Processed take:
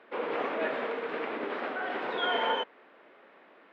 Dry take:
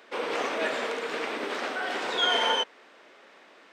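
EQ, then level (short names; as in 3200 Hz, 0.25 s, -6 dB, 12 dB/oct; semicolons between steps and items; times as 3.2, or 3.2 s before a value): air absorption 470 m; 0.0 dB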